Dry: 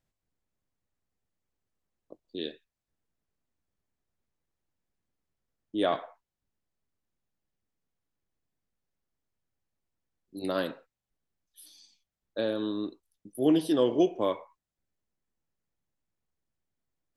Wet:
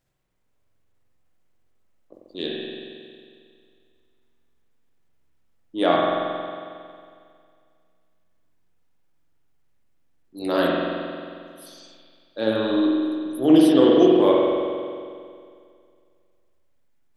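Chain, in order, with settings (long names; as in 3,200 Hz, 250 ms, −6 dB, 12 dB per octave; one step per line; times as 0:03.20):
transient designer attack −8 dB, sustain +1 dB
mains-hum notches 50/100/150/200 Hz
spring reverb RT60 2.2 s, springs 45 ms, chirp 60 ms, DRR −3 dB
level +7.5 dB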